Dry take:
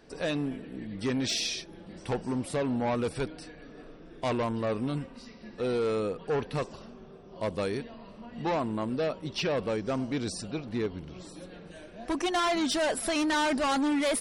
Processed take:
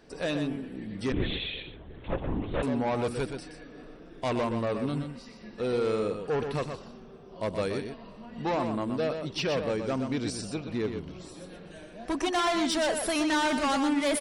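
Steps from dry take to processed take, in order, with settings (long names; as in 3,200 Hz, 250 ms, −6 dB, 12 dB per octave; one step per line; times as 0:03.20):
on a send: single-tap delay 123 ms −7 dB
0:01.12–0:02.63: on the sum: linear-prediction vocoder at 8 kHz whisper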